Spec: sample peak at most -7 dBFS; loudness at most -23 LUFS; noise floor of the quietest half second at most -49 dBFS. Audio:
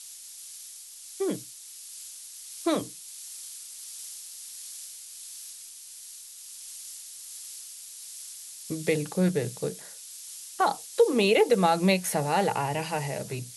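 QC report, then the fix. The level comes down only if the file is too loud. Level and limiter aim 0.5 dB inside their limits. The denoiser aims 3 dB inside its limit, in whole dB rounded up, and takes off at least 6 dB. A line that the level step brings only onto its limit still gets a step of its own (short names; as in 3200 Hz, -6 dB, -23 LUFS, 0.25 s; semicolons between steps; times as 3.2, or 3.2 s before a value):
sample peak -9.0 dBFS: OK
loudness -29.0 LUFS: OK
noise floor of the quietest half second -45 dBFS: fail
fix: denoiser 7 dB, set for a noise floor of -45 dBFS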